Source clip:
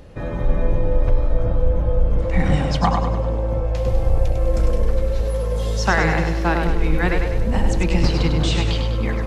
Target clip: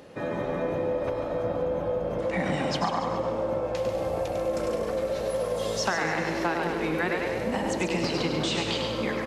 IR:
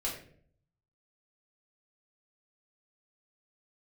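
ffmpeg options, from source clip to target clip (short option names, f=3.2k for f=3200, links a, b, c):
-filter_complex "[0:a]highpass=230,acompressor=threshold=-24dB:ratio=6,asplit=2[a][b];[b]asplit=5[c][d][e][f][g];[c]adelay=140,afreqshift=67,volume=-9dB[h];[d]adelay=280,afreqshift=134,volume=-15.6dB[i];[e]adelay=420,afreqshift=201,volume=-22.1dB[j];[f]adelay=560,afreqshift=268,volume=-28.7dB[k];[g]adelay=700,afreqshift=335,volume=-35.2dB[l];[h][i][j][k][l]amix=inputs=5:normalize=0[m];[a][m]amix=inputs=2:normalize=0"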